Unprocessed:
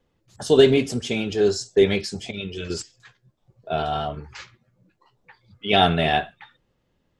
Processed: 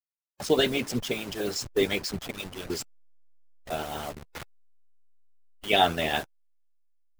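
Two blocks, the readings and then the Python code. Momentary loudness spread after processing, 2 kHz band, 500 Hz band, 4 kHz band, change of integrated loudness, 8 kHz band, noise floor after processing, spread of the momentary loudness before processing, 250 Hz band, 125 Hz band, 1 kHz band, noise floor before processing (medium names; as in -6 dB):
18 LU, -3.5 dB, -9.0 dB, -3.5 dB, -6.5 dB, -1.5 dB, under -85 dBFS, 17 LU, -7.5 dB, -10.0 dB, -5.5 dB, -71 dBFS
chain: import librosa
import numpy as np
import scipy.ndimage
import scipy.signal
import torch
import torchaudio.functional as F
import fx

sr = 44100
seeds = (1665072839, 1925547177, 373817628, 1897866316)

y = fx.delta_hold(x, sr, step_db=-30.5)
y = fx.hpss(y, sr, part='harmonic', gain_db=-16)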